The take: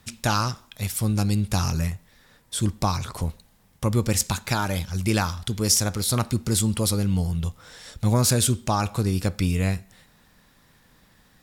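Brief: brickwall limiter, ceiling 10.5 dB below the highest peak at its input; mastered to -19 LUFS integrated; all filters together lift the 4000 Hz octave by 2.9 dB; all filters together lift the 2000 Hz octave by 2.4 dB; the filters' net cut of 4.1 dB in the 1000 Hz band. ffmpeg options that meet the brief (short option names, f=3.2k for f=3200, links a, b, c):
-af "equalizer=f=1k:t=o:g=-7,equalizer=f=2k:t=o:g=5,equalizer=f=4k:t=o:g=3,volume=7dB,alimiter=limit=-7.5dB:level=0:latency=1"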